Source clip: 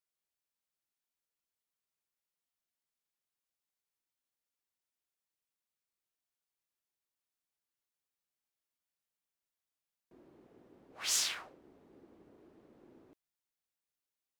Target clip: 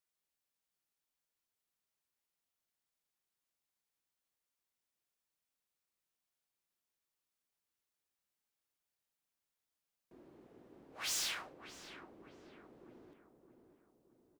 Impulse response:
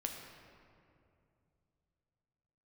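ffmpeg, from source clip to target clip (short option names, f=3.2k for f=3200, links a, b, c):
-filter_complex "[0:a]asoftclip=type=hard:threshold=-36dB,asplit=2[a][b];[b]adelay=618,lowpass=f=1.3k:p=1,volume=-7dB,asplit=2[c][d];[d]adelay=618,lowpass=f=1.3k:p=1,volume=0.54,asplit=2[e][f];[f]adelay=618,lowpass=f=1.3k:p=1,volume=0.54,asplit=2[g][h];[h]adelay=618,lowpass=f=1.3k:p=1,volume=0.54,asplit=2[i][j];[j]adelay=618,lowpass=f=1.3k:p=1,volume=0.54,asplit=2[k][l];[l]adelay=618,lowpass=f=1.3k:p=1,volume=0.54,asplit=2[m][n];[n]adelay=618,lowpass=f=1.3k:p=1,volume=0.54[o];[c][e][g][i][k][m][o]amix=inputs=7:normalize=0[p];[a][p]amix=inputs=2:normalize=0,volume=1dB"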